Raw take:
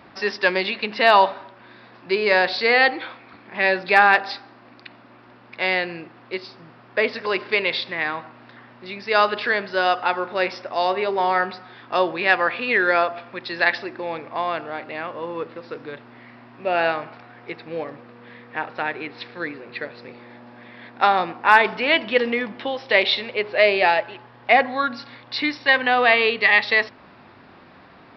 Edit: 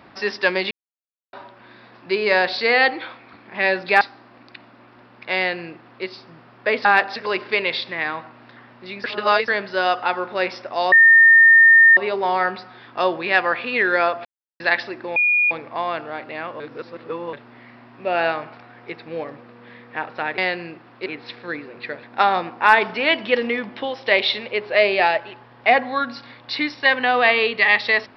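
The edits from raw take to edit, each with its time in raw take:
0.71–1.33 mute
4.01–4.32 move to 7.16
5.68–6.36 copy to 18.98
9.04–9.48 reverse
10.92 add tone 1820 Hz -7 dBFS 1.05 s
13.2–13.55 mute
14.11 add tone 2440 Hz -14 dBFS 0.35 s
15.2–15.93 reverse
19.95–20.86 cut

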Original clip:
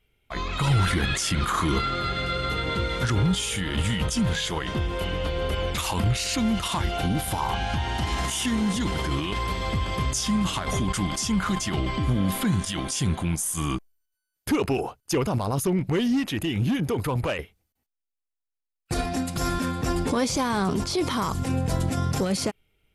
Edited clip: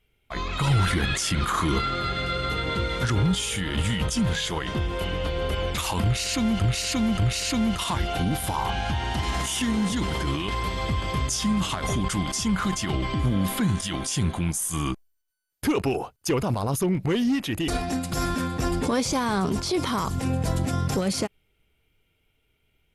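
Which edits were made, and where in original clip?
6.03–6.61 loop, 3 plays
16.52–18.92 cut

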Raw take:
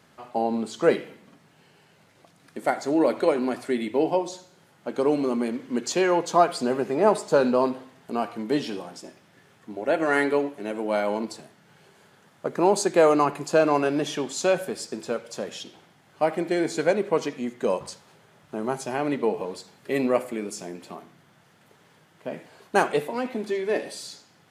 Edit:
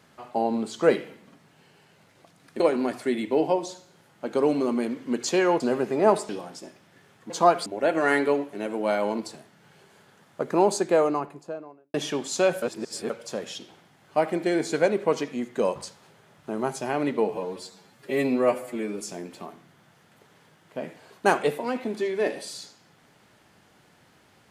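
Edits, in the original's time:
2.6–3.23 cut
6.23–6.59 move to 9.71
7.28–8.7 cut
12.49–13.99 studio fade out
14.67–15.15 reverse
19.39–20.5 stretch 1.5×

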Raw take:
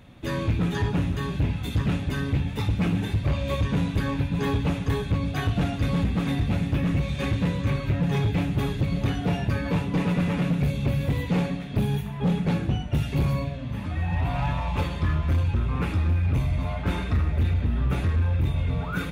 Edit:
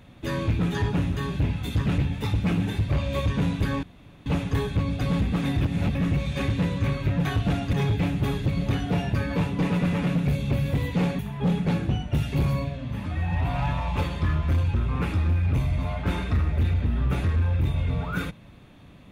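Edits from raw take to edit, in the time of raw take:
1.98–2.33 cut
4.18–4.61 room tone
5.36–5.84 move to 8.08
6.44–6.78 reverse
11.54–11.99 cut

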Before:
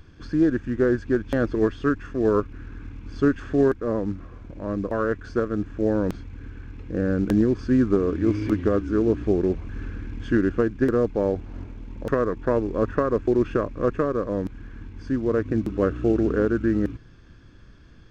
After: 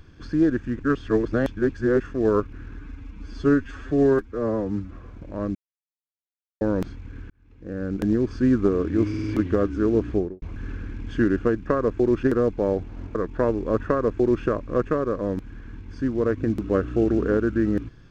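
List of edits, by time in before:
0.79–2 reverse
2.77–4.21 stretch 1.5×
4.83–5.89 mute
6.58–7.64 fade in
8.37 stutter 0.05 s, 4 plays
9.22–9.55 studio fade out
11.72–12.23 cut
12.95–13.51 copy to 10.8

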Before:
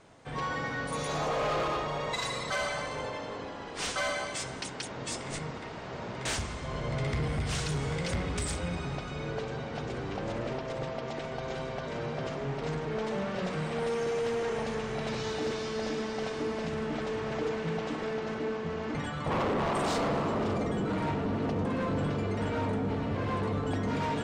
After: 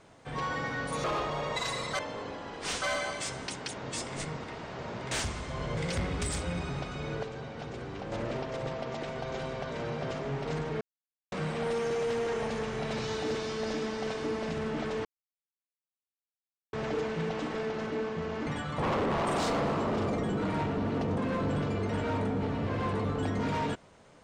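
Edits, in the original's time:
1.04–1.61 cut
2.56–3.13 cut
6.91–7.93 cut
9.39–10.28 gain -4 dB
12.97–13.48 mute
17.21 insert silence 1.68 s

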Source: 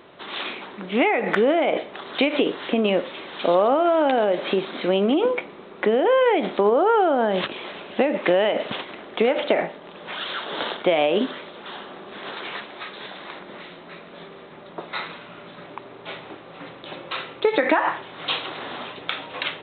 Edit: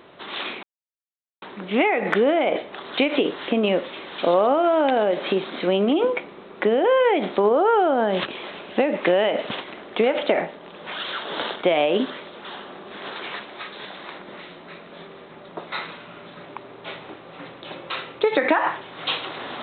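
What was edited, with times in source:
0.63 insert silence 0.79 s

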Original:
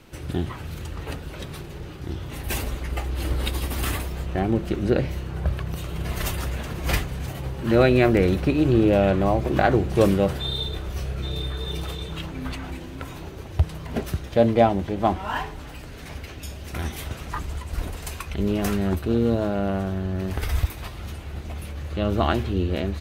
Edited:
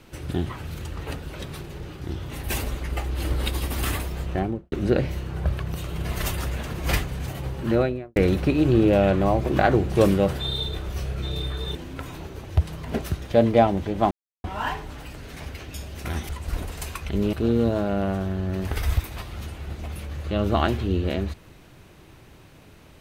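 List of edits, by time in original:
4.32–4.72 studio fade out
7.55–8.16 studio fade out
11.75–12.77 cut
15.13 insert silence 0.33 s
16.98–17.54 cut
18.58–18.99 cut

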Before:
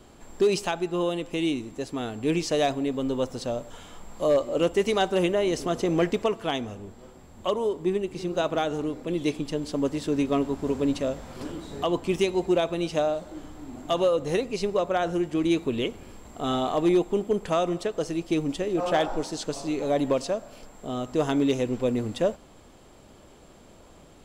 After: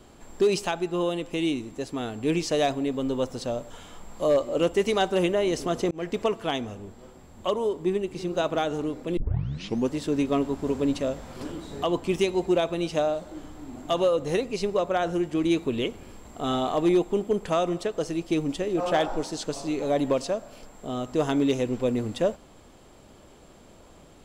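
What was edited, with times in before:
5.91–6.23 fade in
9.17 tape start 0.73 s

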